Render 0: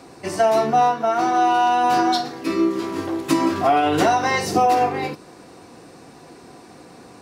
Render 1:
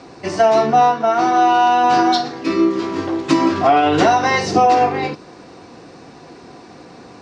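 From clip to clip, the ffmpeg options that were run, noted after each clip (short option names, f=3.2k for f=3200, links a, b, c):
-af "lowpass=f=6.4k:w=0.5412,lowpass=f=6.4k:w=1.3066,volume=4dB"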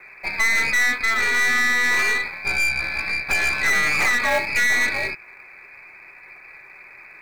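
-filter_complex "[0:a]lowpass=f=2.3k:t=q:w=0.5098,lowpass=f=2.3k:t=q:w=0.6013,lowpass=f=2.3k:t=q:w=0.9,lowpass=f=2.3k:t=q:w=2.563,afreqshift=-2700,acrossover=split=1100[a][b];[a]acrusher=bits=3:mode=log:mix=0:aa=0.000001[c];[b]aeval=exprs='(tanh(8.91*val(0)+0.75)-tanh(0.75))/8.91':c=same[d];[c][d]amix=inputs=2:normalize=0"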